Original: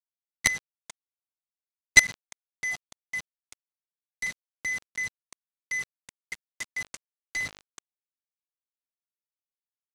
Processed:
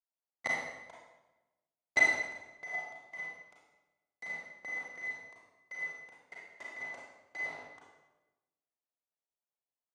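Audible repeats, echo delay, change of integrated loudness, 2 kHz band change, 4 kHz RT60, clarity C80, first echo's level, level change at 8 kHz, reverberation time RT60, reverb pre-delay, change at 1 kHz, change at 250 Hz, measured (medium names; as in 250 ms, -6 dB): no echo, no echo, -8.0 dB, -6.5 dB, 0.85 s, 3.0 dB, no echo, -20.0 dB, 1.1 s, 31 ms, +3.0 dB, -4.0 dB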